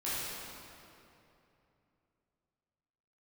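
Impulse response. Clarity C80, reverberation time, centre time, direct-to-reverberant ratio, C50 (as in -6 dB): -2.0 dB, 2.9 s, 0.183 s, -11.0 dB, -4.5 dB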